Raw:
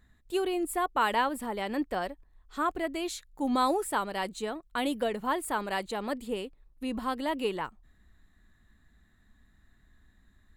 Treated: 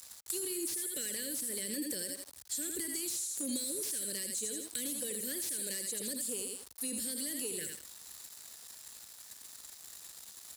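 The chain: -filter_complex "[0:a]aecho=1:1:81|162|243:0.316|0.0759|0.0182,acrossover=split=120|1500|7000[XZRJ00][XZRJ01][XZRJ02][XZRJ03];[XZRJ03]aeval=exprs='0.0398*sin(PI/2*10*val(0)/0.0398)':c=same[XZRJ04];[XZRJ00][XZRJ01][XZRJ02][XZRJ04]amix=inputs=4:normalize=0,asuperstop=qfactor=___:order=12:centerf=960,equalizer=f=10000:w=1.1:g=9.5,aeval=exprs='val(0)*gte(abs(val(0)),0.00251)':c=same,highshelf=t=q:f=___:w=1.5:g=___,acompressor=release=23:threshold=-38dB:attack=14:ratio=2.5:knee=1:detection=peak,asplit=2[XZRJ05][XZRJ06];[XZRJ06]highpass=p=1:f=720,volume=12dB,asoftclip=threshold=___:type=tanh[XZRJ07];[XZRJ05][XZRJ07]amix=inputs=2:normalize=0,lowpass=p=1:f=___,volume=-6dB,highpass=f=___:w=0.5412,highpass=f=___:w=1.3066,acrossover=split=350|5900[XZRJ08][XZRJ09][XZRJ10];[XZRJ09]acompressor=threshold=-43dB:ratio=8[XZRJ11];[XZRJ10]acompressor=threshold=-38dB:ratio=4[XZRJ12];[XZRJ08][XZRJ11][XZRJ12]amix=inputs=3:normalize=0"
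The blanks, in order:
0.88, 3600, 7, -13.5dB, 5100, 58, 58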